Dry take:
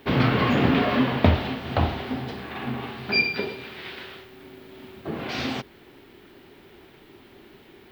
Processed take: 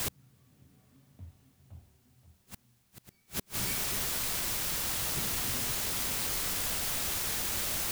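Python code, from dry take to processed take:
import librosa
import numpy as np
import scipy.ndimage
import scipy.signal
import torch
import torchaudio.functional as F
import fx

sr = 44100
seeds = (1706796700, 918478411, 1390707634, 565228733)

y = fx.doppler_pass(x, sr, speed_mps=17, closest_m=8.4, pass_at_s=1.63)
y = fx.peak_eq(y, sr, hz=100.0, db=13.5, octaves=2.1)
y = fx.comb_fb(y, sr, f0_hz=190.0, decay_s=1.1, harmonics='all', damping=0.0, mix_pct=70)
y = y + 10.0 ** (-9.5 / 20.0) * np.pad(y, (int(527 * sr / 1000.0), 0))[:len(y)]
y = fx.quant_dither(y, sr, seeds[0], bits=6, dither='triangular')
y = fx.low_shelf(y, sr, hz=150.0, db=11.0)
y = fx.gate_flip(y, sr, shuts_db=-26.0, range_db=-39)
y = F.gain(torch.from_numpy(y), 3.0).numpy()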